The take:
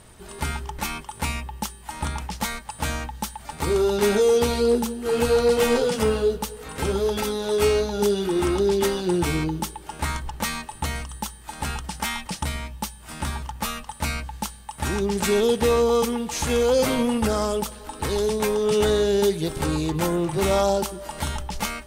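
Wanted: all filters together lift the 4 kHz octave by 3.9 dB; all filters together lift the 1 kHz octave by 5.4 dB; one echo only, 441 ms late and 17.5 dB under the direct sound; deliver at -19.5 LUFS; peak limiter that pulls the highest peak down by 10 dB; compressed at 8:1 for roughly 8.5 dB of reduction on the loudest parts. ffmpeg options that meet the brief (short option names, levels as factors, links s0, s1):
-af "equalizer=f=1000:t=o:g=6.5,equalizer=f=4000:t=o:g=4.5,acompressor=threshold=0.0708:ratio=8,alimiter=limit=0.112:level=0:latency=1,aecho=1:1:441:0.133,volume=3.16"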